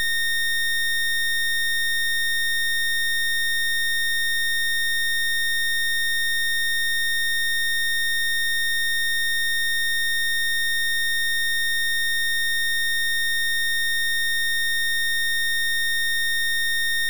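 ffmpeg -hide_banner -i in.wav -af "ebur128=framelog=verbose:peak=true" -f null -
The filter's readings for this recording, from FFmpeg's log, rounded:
Integrated loudness:
  I:         -20.9 LUFS
  Threshold: -30.9 LUFS
Loudness range:
  LRA:         0.0 LU
  Threshold: -40.9 LUFS
  LRA low:   -20.9 LUFS
  LRA high:  -20.9 LUFS
True peak:
  Peak:      -19.7 dBFS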